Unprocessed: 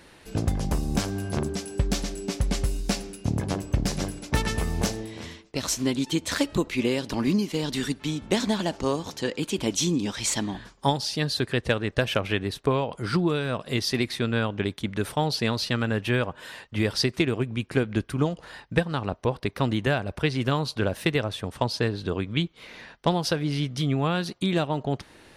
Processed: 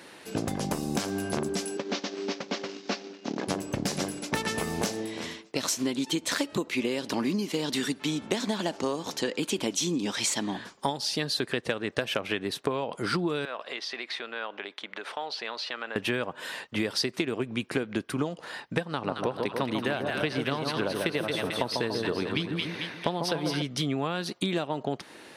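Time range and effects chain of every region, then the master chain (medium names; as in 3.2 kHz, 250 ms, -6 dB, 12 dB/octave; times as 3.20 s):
1.77–3.48 s: CVSD coder 32 kbps + high-pass 220 Hz 24 dB/octave + transient shaper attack -3 dB, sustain -10 dB
13.45–15.96 s: compression 5:1, threshold -29 dBFS + band-pass 630–3600 Hz
18.89–23.62 s: band-stop 7.2 kHz, Q 5.7 + two-band feedback delay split 1.2 kHz, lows 144 ms, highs 221 ms, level -5 dB
whole clip: high-pass 210 Hz 12 dB/octave; compression, threshold -29 dBFS; trim +4 dB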